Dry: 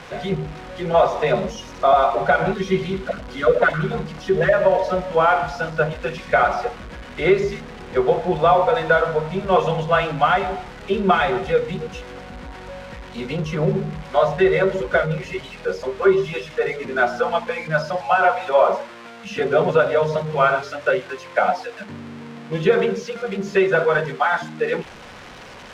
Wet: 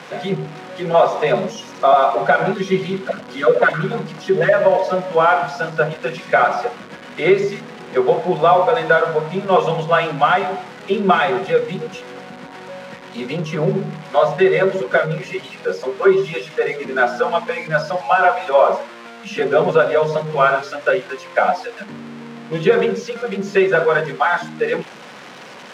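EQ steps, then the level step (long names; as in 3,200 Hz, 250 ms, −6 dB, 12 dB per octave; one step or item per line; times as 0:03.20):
high-pass filter 150 Hz 24 dB per octave
+2.5 dB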